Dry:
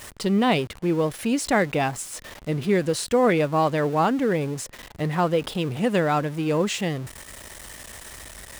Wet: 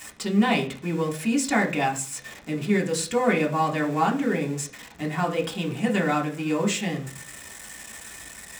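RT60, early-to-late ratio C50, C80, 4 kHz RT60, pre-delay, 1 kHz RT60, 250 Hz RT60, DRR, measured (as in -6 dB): 0.45 s, 13.0 dB, 18.0 dB, 0.50 s, 3 ms, 0.40 s, 0.60 s, -0.5 dB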